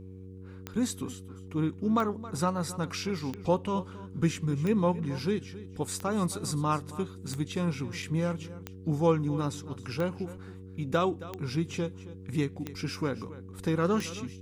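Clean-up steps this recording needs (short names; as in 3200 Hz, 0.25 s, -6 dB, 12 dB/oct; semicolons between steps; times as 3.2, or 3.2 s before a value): de-click; de-hum 94.1 Hz, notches 5; inverse comb 0.271 s -16.5 dB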